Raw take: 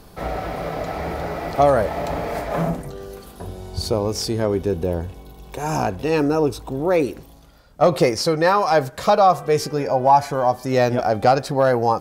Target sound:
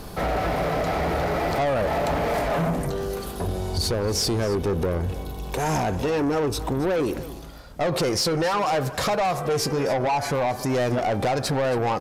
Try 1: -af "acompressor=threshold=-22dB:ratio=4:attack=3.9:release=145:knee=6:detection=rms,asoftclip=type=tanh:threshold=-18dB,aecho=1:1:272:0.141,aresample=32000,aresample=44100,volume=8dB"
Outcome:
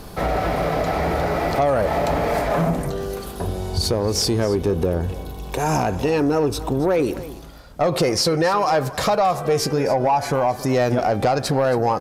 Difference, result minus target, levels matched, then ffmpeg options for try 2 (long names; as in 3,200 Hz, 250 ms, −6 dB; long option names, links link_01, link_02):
soft clipping: distortion −11 dB
-af "acompressor=threshold=-22dB:ratio=4:attack=3.9:release=145:knee=6:detection=rms,asoftclip=type=tanh:threshold=-27.5dB,aecho=1:1:272:0.141,aresample=32000,aresample=44100,volume=8dB"